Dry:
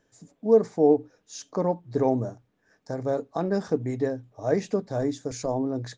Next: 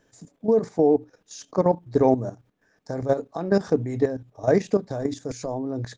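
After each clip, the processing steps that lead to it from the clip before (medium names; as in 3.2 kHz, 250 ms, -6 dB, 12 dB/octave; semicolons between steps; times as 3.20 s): level held to a coarse grid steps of 12 dB; trim +7.5 dB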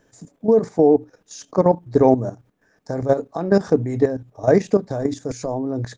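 peaking EQ 3.5 kHz -3.5 dB 1.5 oct; trim +4.5 dB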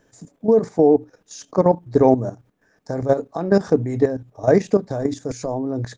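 no audible change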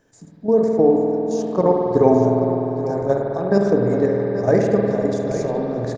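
delay 832 ms -11 dB; spring tank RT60 3.6 s, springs 50 ms, chirp 25 ms, DRR -1 dB; trim -2.5 dB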